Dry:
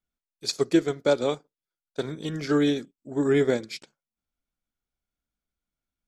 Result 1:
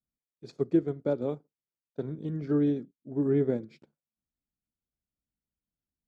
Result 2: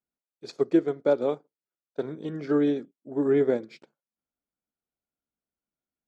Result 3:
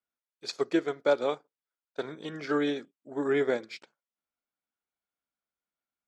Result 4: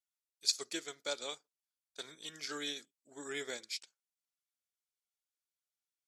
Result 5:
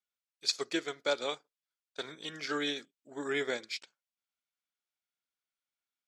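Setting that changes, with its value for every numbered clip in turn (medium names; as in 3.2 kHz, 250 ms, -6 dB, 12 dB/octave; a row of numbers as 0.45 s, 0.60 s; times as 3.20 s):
band-pass filter, frequency: 140 Hz, 440 Hz, 1.1 kHz, 8 kHz, 3 kHz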